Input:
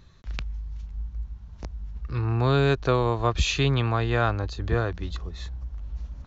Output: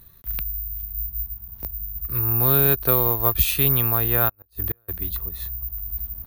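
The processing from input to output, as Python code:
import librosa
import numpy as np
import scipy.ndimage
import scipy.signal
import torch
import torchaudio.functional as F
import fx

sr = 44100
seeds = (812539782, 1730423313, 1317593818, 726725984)

y = (np.kron(x[::3], np.eye(3)[0]) * 3)[:len(x)]
y = fx.gate_flip(y, sr, shuts_db=-8.0, range_db=-41, at=(4.28, 4.88), fade=0.02)
y = F.gain(torch.from_numpy(y), -1.5).numpy()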